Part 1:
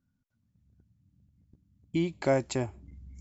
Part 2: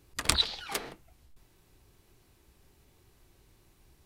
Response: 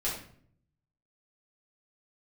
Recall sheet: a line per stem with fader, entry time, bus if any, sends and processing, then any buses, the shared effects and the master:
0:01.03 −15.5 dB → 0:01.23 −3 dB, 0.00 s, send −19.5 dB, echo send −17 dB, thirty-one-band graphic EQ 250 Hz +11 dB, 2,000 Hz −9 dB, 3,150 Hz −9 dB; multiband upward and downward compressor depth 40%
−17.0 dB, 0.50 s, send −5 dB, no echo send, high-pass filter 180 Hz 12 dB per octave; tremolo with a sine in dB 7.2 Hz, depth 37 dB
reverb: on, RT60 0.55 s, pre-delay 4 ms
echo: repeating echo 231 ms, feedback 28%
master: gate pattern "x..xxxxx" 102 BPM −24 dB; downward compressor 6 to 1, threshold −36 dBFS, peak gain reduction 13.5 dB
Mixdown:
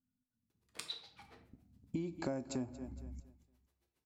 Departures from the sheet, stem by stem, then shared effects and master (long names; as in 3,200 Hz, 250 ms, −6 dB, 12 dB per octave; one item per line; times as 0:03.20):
stem 1: missing multiband upward and downward compressor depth 40%
master: missing gate pattern "x..xxxxx" 102 BPM −24 dB